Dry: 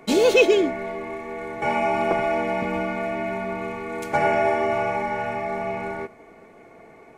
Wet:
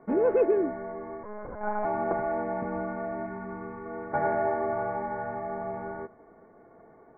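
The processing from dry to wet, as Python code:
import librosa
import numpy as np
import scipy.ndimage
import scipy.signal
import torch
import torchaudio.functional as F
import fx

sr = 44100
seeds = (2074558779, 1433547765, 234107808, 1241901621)

y = fx.wiener(x, sr, points=9)
y = scipy.signal.sosfilt(scipy.signal.butter(8, 1800.0, 'lowpass', fs=sr, output='sos'), y)
y = fx.lpc_monotone(y, sr, seeds[0], pitch_hz=210.0, order=8, at=(1.23, 1.85))
y = fx.peak_eq(y, sr, hz=620.0, db=-11.0, octaves=0.43, at=(3.26, 3.86))
y = y * 10.0 ** (-6.0 / 20.0)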